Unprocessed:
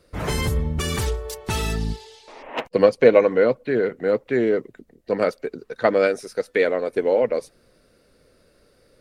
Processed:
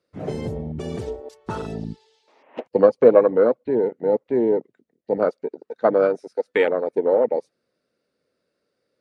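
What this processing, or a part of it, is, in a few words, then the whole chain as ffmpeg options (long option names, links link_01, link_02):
over-cleaned archive recording: -af "highpass=160,lowpass=7300,afwtdn=0.0708,volume=1dB"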